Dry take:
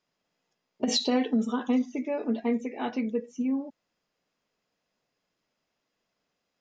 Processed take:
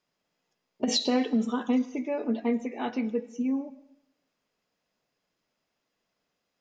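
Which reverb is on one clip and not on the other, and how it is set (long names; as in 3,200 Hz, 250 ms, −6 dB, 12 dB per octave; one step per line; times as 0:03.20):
comb and all-pass reverb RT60 0.84 s, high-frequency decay 0.95×, pre-delay 70 ms, DRR 18 dB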